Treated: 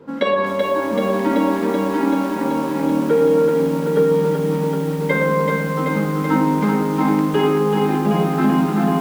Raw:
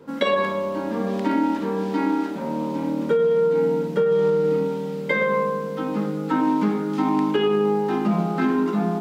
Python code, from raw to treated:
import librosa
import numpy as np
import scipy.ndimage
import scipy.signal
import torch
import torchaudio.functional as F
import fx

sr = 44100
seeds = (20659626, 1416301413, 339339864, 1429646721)

y = fx.high_shelf(x, sr, hz=3700.0, db=-8.5)
y = y + 10.0 ** (-23.0 / 20.0) * np.pad(y, (int(285 * sr / 1000.0), 0))[:len(y)]
y = fx.echo_crushed(y, sr, ms=382, feedback_pct=80, bits=7, wet_db=-4.0)
y = y * 10.0 ** (3.0 / 20.0)